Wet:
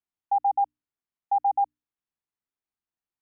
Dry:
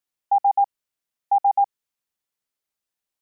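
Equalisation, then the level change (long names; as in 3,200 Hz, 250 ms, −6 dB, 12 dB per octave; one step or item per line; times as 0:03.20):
low-pass filter 1,000 Hz 6 dB per octave
parametric band 540 Hz −12.5 dB 0.32 octaves
mains-hum notches 60/120/180/240/300 Hz
−1.5 dB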